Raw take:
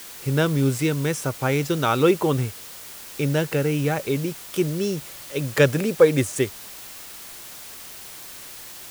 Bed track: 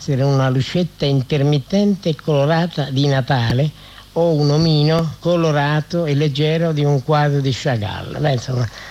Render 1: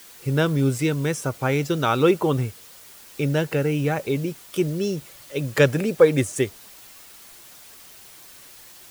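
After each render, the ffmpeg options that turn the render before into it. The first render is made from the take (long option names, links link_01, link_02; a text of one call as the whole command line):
ffmpeg -i in.wav -af "afftdn=noise_reduction=7:noise_floor=-40" out.wav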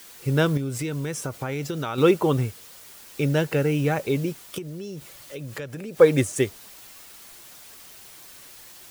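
ffmpeg -i in.wav -filter_complex "[0:a]asettb=1/sr,asplit=3[link_01][link_02][link_03];[link_01]atrim=end=0.574[link_04];[link_02]atrim=start=0.57:end=1.98,asetpts=PTS-STARTPTS,afade=type=in:duration=0.004:curve=qsin,afade=type=out:start_time=1.406:duration=0.004:curve=qsin,acompressor=threshold=-25dB:ratio=6:attack=3.2:release=140:knee=1:detection=peak[link_05];[link_03]atrim=start=1.976[link_06];[link_04][link_05]acrossfade=duration=0.004:curve1=hsin:curve2=qsin[link_07];[link_07][link_06]acrossfade=duration=0.004:curve1=qsin:curve2=hsin,asettb=1/sr,asplit=3[link_08][link_09][link_10];[link_08]atrim=end=4.584[link_11];[link_09]atrim=start=4.58:end=5.97,asetpts=PTS-STARTPTS,afade=type=in:duration=0.004:curve=qsin,afade=type=out:start_time=1.386:duration=0.004:curve=qsin,acompressor=threshold=-32dB:ratio=6:attack=3.2:release=140:knee=1:detection=peak[link_12];[link_10]atrim=start=5.966[link_13];[link_11][link_12]acrossfade=duration=0.004:curve1=hsin:curve2=qsin[link_14];[link_14][link_13]acrossfade=duration=0.004:curve1=qsin:curve2=hsin" out.wav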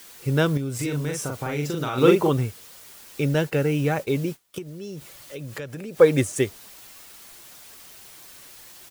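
ffmpeg -i in.wav -filter_complex "[0:a]asplit=3[link_01][link_02][link_03];[link_01]afade=type=out:start_time=0.79:duration=0.02[link_04];[link_02]asplit=2[link_05][link_06];[link_06]adelay=41,volume=-2.5dB[link_07];[link_05][link_07]amix=inputs=2:normalize=0,afade=type=in:start_time=0.79:duration=0.02,afade=type=out:start_time=2.28:duration=0.02[link_08];[link_03]afade=type=in:start_time=2.28:duration=0.02[link_09];[link_04][link_08][link_09]amix=inputs=3:normalize=0,asettb=1/sr,asplit=3[link_10][link_11][link_12];[link_10]atrim=end=3.344[link_13];[link_11]atrim=start=3.34:end=4.82,asetpts=PTS-STARTPTS,afade=type=in:duration=0.004:curve=qsin,afade=type=out:start_time=1.476:duration=0.004:curve=qsin,agate=range=-33dB:threshold=-33dB:ratio=3:release=100:detection=peak[link_14];[link_12]atrim=start=4.816[link_15];[link_13][link_14]acrossfade=duration=0.004:curve1=hsin:curve2=qsin[link_16];[link_16][link_15]acrossfade=duration=0.004:curve1=qsin:curve2=hsin" out.wav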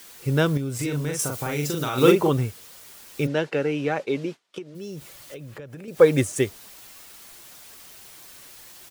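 ffmpeg -i in.wav -filter_complex "[0:a]asettb=1/sr,asplit=3[link_01][link_02][link_03];[link_01]atrim=end=1.194[link_04];[link_02]atrim=start=1.19:end=2.12,asetpts=PTS-STARTPTS,afade=type=in:duration=0.004:curve=qsin,afade=type=out:start_time=0.926:duration=0.004:curve=qsin,highshelf=frequency=5000:gain=9.5[link_05];[link_03]atrim=start=2.116[link_06];[link_04][link_05]acrossfade=duration=0.004:curve1=hsin:curve2=qsin[link_07];[link_07][link_06]acrossfade=duration=0.004:curve1=qsin:curve2=hsin,asplit=3[link_08][link_09][link_10];[link_08]afade=type=out:start_time=3.26:duration=0.02[link_11];[link_09]highpass=240,lowpass=4800,afade=type=in:start_time=3.26:duration=0.02,afade=type=out:start_time=4.74:duration=0.02[link_12];[link_10]afade=type=in:start_time=4.74:duration=0.02[link_13];[link_11][link_12][link_13]amix=inputs=3:normalize=0,asettb=1/sr,asplit=3[link_14][link_15][link_16];[link_14]atrim=end=5.344[link_17];[link_15]atrim=start=5.34:end=5.88,asetpts=PTS-STARTPTS,afade=type=in:duration=0.004:curve=qsin,afade=type=out:start_time=0.536:duration=0.004:curve=qsin,acrossover=split=1100|3500[link_18][link_19][link_20];[link_18]acompressor=threshold=-37dB:ratio=4[link_21];[link_19]acompressor=threshold=-49dB:ratio=4[link_22];[link_20]acompressor=threshold=-59dB:ratio=4[link_23];[link_21][link_22][link_23]amix=inputs=3:normalize=0[link_24];[link_16]atrim=start=5.876[link_25];[link_17][link_24]acrossfade=duration=0.004:curve1=hsin:curve2=qsin[link_26];[link_26][link_25]acrossfade=duration=0.004:curve1=qsin:curve2=hsin" out.wav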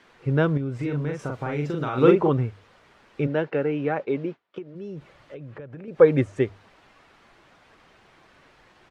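ffmpeg -i in.wav -af "lowpass=1900,bandreject=frequency=50:width_type=h:width=6,bandreject=frequency=100:width_type=h:width=6" out.wav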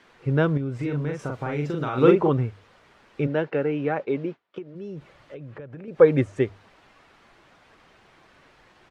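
ffmpeg -i in.wav -af anull out.wav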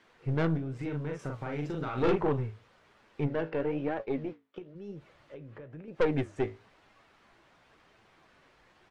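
ffmpeg -i in.wav -af "flanger=delay=8.9:depth=9.7:regen=66:speed=1:shape=sinusoidal,aeval=exprs='(tanh(11.2*val(0)+0.55)-tanh(0.55))/11.2':channel_layout=same" out.wav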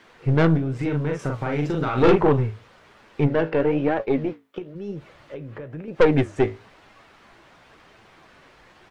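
ffmpeg -i in.wav -af "volume=10.5dB" out.wav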